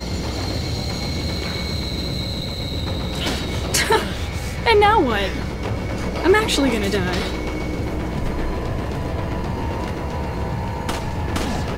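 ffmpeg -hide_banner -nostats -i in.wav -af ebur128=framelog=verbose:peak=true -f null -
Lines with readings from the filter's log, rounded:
Integrated loudness:
  I:         -22.0 LUFS
  Threshold: -32.0 LUFS
Loudness range:
  LRA:         6.7 LU
  Threshold: -41.4 LUFS
  LRA low:   -25.6 LUFS
  LRA high:  -18.8 LUFS
True peak:
  Peak:       -3.5 dBFS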